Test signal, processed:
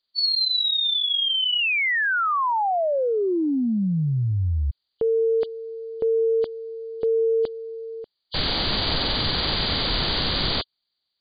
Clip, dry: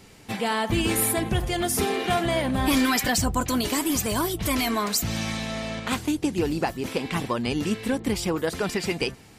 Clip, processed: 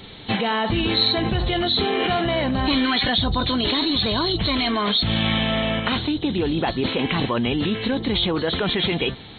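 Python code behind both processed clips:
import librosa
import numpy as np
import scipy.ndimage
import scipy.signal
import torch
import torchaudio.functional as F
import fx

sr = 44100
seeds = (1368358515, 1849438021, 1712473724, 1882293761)

p1 = fx.freq_compress(x, sr, knee_hz=2900.0, ratio=4.0)
p2 = fx.over_compress(p1, sr, threshold_db=-29.0, ratio=-0.5)
y = p1 + (p2 * librosa.db_to_amplitude(-0.5))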